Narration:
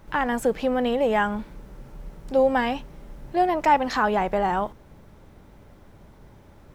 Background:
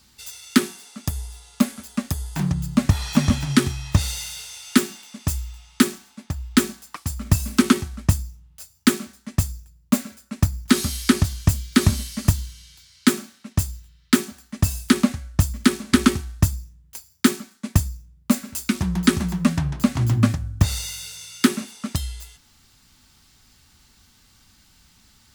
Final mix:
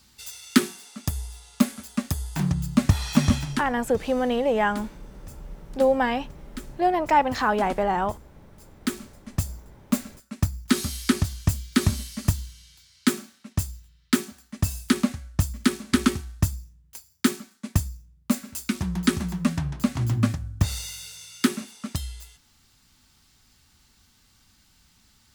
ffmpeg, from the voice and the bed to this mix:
-filter_complex "[0:a]adelay=3450,volume=-0.5dB[a];[1:a]volume=15dB,afade=t=out:st=3.37:d=0.26:silence=0.105925,afade=t=in:st=8.4:d=1.11:silence=0.149624[b];[a][b]amix=inputs=2:normalize=0"

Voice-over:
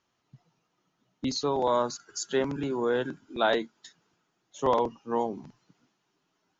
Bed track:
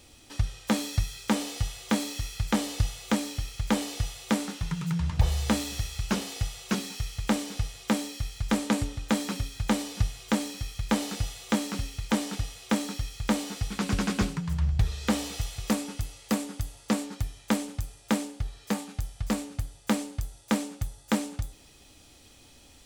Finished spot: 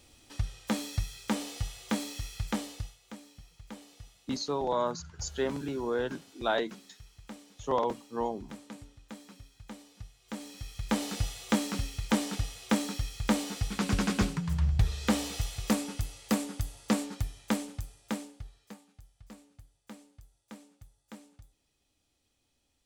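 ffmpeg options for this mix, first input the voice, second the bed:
-filter_complex "[0:a]adelay=3050,volume=-4dB[a];[1:a]volume=14dB,afade=t=out:st=2.43:d=0.55:silence=0.177828,afade=t=in:st=10.21:d=1.01:silence=0.112202,afade=t=out:st=17.02:d=1.77:silence=0.0891251[b];[a][b]amix=inputs=2:normalize=0"

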